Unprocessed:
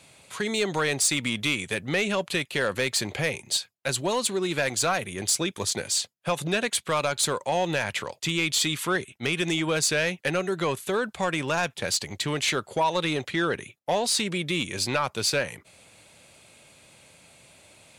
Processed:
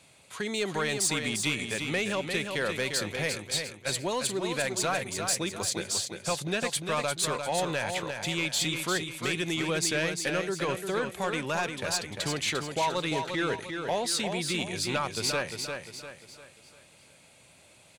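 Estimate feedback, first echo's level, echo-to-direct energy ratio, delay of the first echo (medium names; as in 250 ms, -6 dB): 41%, -6.0 dB, -5.0 dB, 349 ms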